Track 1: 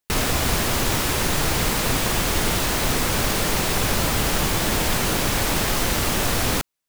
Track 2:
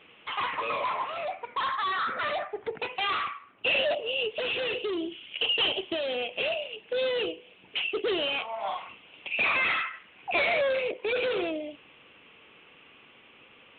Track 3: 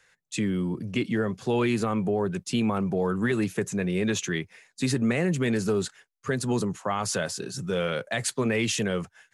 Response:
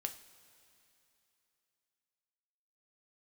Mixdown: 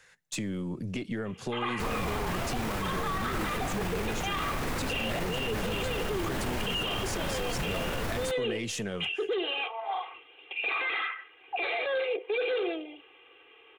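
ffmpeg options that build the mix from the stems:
-filter_complex "[0:a]acrossover=split=2700[link_01][link_02];[link_02]acompressor=threshold=-34dB:ratio=4:attack=1:release=60[link_03];[link_01][link_03]amix=inputs=2:normalize=0,adelay=1700,volume=-7dB[link_04];[1:a]lowshelf=frequency=280:width_type=q:width=1.5:gain=-10.5,aecho=1:1:2.5:0.88,adelay=1250,volume=-4.5dB[link_05];[2:a]acompressor=threshold=-34dB:ratio=10,aeval=exprs='0.0841*(cos(1*acos(clip(val(0)/0.0841,-1,1)))-cos(1*PI/2))+0.0075*(cos(4*acos(clip(val(0)/0.0841,-1,1)))-cos(4*PI/2))':channel_layout=same,acontrast=34,volume=-3.5dB,asplit=2[link_06][link_07];[link_07]volume=-13.5dB[link_08];[3:a]atrim=start_sample=2205[link_09];[link_08][link_09]afir=irnorm=-1:irlink=0[link_10];[link_04][link_05][link_06][link_10]amix=inputs=4:normalize=0,alimiter=limit=-23dB:level=0:latency=1:release=13"

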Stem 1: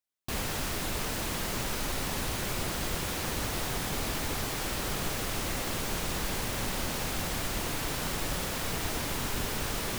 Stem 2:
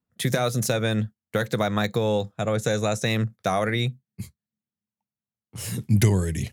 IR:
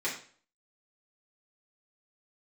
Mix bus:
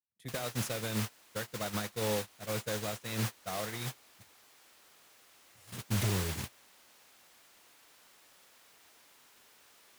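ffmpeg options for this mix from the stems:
-filter_complex "[0:a]highpass=frequency=1000:poles=1,volume=-1.5dB[link_01];[1:a]asoftclip=type=hard:threshold=-14dB,alimiter=limit=-19dB:level=0:latency=1:release=75,volume=-6dB[link_02];[link_01][link_02]amix=inputs=2:normalize=0,agate=range=-24dB:threshold=-31dB:ratio=16:detection=peak,equalizer=frequency=150:width_type=o:width=0.37:gain=-4"

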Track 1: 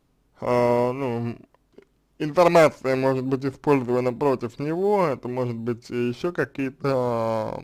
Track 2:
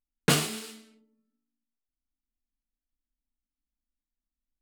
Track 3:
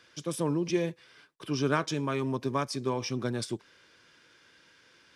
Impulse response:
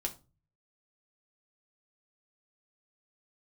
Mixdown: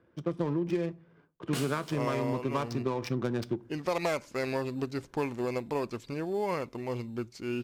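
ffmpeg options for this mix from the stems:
-filter_complex "[0:a]adynamicequalizer=threshold=0.0141:dfrequency=1700:dqfactor=0.7:tfrequency=1700:tqfactor=0.7:attack=5:release=100:ratio=0.375:range=3.5:mode=boostabove:tftype=highshelf,adelay=1500,volume=-8.5dB[link_01];[1:a]adelay=1250,volume=-7.5dB[link_02];[2:a]adynamicsmooth=sensitivity=6.5:basefreq=540,volume=2.5dB,asplit=2[link_03][link_04];[link_04]volume=-10dB[link_05];[3:a]atrim=start_sample=2205[link_06];[link_05][link_06]afir=irnorm=-1:irlink=0[link_07];[link_01][link_02][link_03][link_07]amix=inputs=4:normalize=0,acompressor=threshold=-26dB:ratio=10"

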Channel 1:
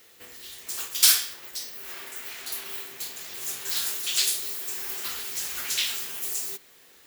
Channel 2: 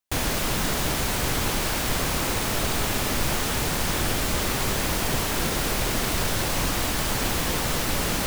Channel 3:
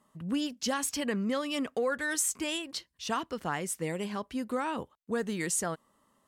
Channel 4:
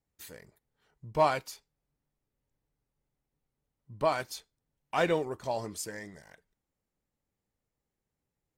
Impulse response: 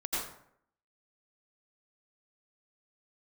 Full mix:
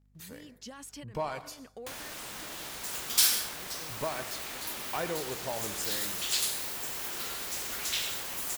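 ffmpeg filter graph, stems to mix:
-filter_complex "[0:a]adelay=2150,volume=-8dB,asplit=2[link_01][link_02];[link_02]volume=-9dB[link_03];[1:a]highpass=frequency=650:poles=1,adelay=1750,volume=-7dB[link_04];[2:a]alimiter=level_in=3dB:limit=-24dB:level=0:latency=1:release=83,volume=-3dB,aeval=exprs='val(0)*gte(abs(val(0)),0.00106)':channel_layout=same,volume=-8.5dB[link_05];[3:a]acompressor=threshold=-34dB:ratio=2.5,aeval=exprs='val(0)+0.000631*(sin(2*PI*50*n/s)+sin(2*PI*2*50*n/s)/2+sin(2*PI*3*50*n/s)/3+sin(2*PI*4*50*n/s)/4+sin(2*PI*5*50*n/s)/5)':channel_layout=same,volume=-1dB,asplit=3[link_06][link_07][link_08];[link_07]volume=-16.5dB[link_09];[link_08]apad=whole_len=276735[link_10];[link_05][link_10]sidechaincompress=threshold=-55dB:ratio=5:attack=8.3:release=200[link_11];[link_04][link_11]amix=inputs=2:normalize=0,lowshelf=frequency=63:gain=10.5,acompressor=threshold=-39dB:ratio=6,volume=0dB[link_12];[4:a]atrim=start_sample=2205[link_13];[link_03][link_09]amix=inputs=2:normalize=0[link_14];[link_14][link_13]afir=irnorm=-1:irlink=0[link_15];[link_01][link_06][link_12][link_15]amix=inputs=4:normalize=0"

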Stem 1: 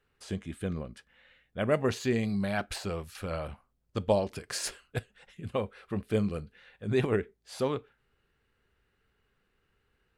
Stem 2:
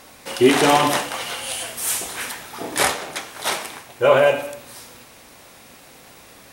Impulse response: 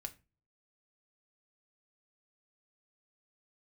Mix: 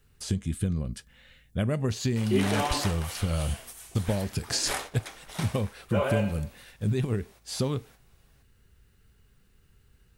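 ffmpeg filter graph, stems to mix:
-filter_complex "[0:a]acrossover=split=5900[link_01][link_02];[link_02]acompressor=threshold=-55dB:ratio=4:attack=1:release=60[link_03];[link_01][link_03]amix=inputs=2:normalize=0,bass=frequency=250:gain=14,treble=frequency=4000:gain=15,acompressor=threshold=-25dB:ratio=10,volume=2dB,asplit=2[link_04][link_05];[1:a]adelay=1900,volume=-15dB,asplit=2[link_06][link_07];[link_07]volume=-9dB[link_08];[link_05]apad=whole_len=371576[link_09];[link_06][link_09]sidechaingate=range=-19dB:threshold=-49dB:ratio=16:detection=peak[link_10];[2:a]atrim=start_sample=2205[link_11];[link_08][link_11]afir=irnorm=-1:irlink=0[link_12];[link_04][link_10][link_12]amix=inputs=3:normalize=0"

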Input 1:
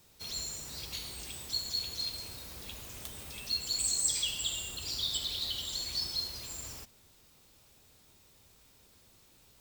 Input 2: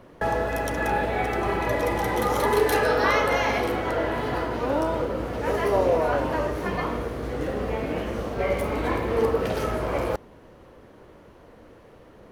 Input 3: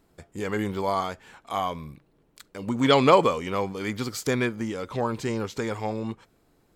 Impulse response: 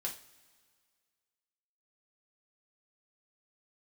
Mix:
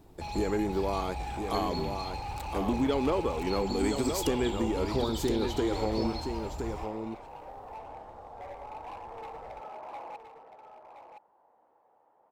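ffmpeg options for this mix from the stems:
-filter_complex "[0:a]aemphasis=mode=reproduction:type=riaa,volume=-2.5dB[link_01];[1:a]bandpass=frequency=830:width_type=q:width=8.1:csg=0,asoftclip=type=hard:threshold=-37dB,volume=-2dB,asplit=2[link_02][link_03];[link_03]volume=-8dB[link_04];[2:a]equalizer=frequency=340:width=1.1:gain=12,acompressor=threshold=-24dB:ratio=5,highshelf=frequency=10000:gain=8.5,volume=-3dB,asplit=2[link_05][link_06];[link_06]volume=-6.5dB[link_07];[link_04][link_07]amix=inputs=2:normalize=0,aecho=0:1:1018:1[link_08];[link_01][link_02][link_05][link_08]amix=inputs=4:normalize=0"

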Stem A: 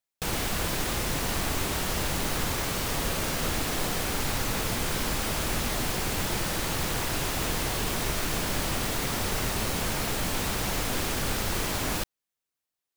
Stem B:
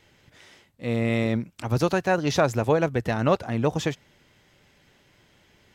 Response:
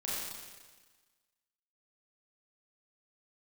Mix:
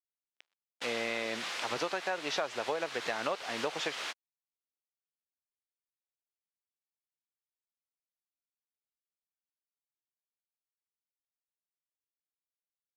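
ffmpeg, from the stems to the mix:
-filter_complex "[0:a]tiltshelf=frequency=1200:gain=-7,flanger=delay=7.9:depth=9.6:regen=64:speed=0.49:shape=sinusoidal,adelay=550,volume=-1.5dB[link_01];[1:a]highshelf=frequency=2900:gain=5.5,volume=-0.5dB,asplit=2[link_02][link_03];[link_03]apad=whole_len=596059[link_04];[link_01][link_04]sidechaingate=range=-33dB:threshold=-49dB:ratio=16:detection=peak[link_05];[link_05][link_02]amix=inputs=2:normalize=0,acrusher=bits=5:mix=0:aa=0.5,highpass=520,lowpass=3900,acompressor=threshold=-30dB:ratio=6"

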